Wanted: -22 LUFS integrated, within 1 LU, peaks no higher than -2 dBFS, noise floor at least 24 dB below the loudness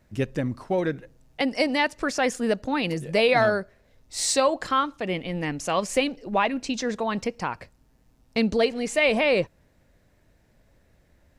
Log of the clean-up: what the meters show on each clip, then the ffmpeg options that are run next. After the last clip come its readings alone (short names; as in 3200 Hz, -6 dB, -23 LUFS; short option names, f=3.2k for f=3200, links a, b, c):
loudness -25.0 LUFS; peak -9.0 dBFS; loudness target -22.0 LUFS
-> -af "volume=3dB"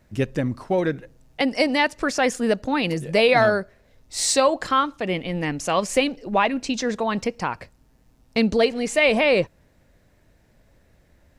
loudness -22.0 LUFS; peak -6.0 dBFS; noise floor -60 dBFS